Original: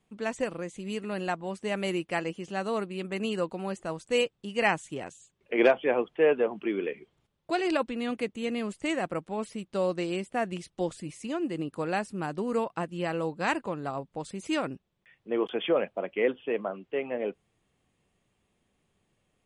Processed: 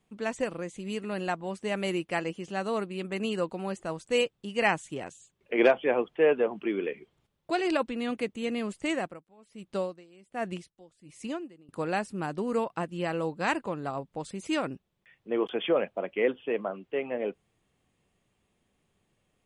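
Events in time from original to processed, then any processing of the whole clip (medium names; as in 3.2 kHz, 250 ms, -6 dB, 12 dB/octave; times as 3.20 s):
8.96–11.69 s: logarithmic tremolo 1.3 Hz, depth 25 dB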